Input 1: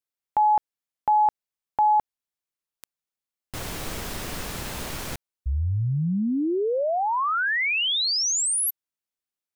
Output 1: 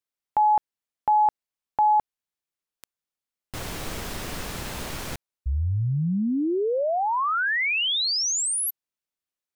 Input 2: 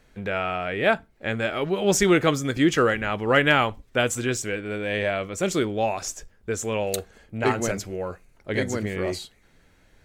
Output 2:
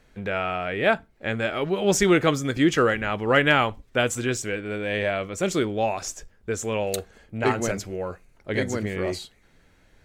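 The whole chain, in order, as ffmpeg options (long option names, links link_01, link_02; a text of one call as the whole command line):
ffmpeg -i in.wav -af "highshelf=frequency=8200:gain=-3" out.wav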